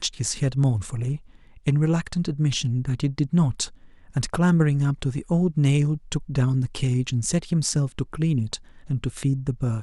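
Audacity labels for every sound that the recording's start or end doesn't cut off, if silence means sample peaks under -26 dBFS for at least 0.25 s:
1.670000	3.650000	sound
4.160000	8.560000	sound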